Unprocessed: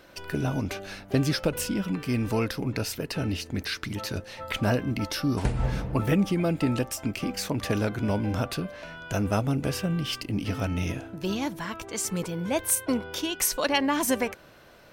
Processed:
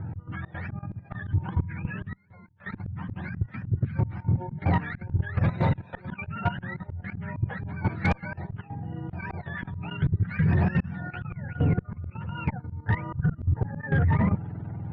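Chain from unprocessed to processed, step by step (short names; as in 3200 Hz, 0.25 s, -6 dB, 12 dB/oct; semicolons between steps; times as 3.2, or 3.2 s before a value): spectrum mirrored in octaves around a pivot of 690 Hz; LPF 1900 Hz 24 dB/oct; resonant low shelf 210 Hz +10.5 dB, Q 1.5; notch 1100 Hz, Q 7.6; in parallel at -2 dB: compressor 4:1, threshold -28 dBFS, peak gain reduction 19 dB; on the sum: auto swell 0.557 s; 2.1–2.77 flipped gate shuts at -29 dBFS, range -29 dB; level quantiser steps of 15 dB; added harmonics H 5 -13 dB, 7 -26 dB, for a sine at -18.5 dBFS; gain +6 dB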